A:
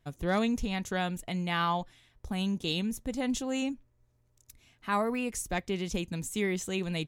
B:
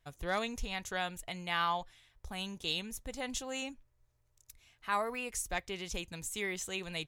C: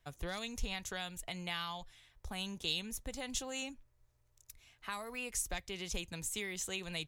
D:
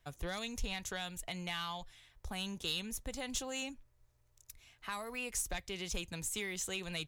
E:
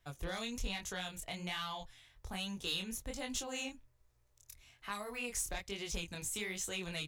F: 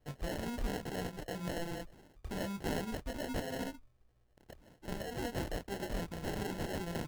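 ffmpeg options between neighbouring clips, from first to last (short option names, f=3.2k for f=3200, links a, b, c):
-af "equalizer=f=220:t=o:w=1.9:g=-13,volume=-1dB"
-filter_complex "[0:a]acrossover=split=160|3000[a][b][c];[b]acompressor=threshold=-42dB:ratio=6[d];[a][d][c]amix=inputs=3:normalize=0,volume=1dB"
-af "asoftclip=type=tanh:threshold=-28.5dB,volume=1.5dB"
-af "flanger=delay=19:depth=8:speed=1.2,volume=2.5dB"
-af "acrusher=samples=37:mix=1:aa=0.000001,volume=2.5dB"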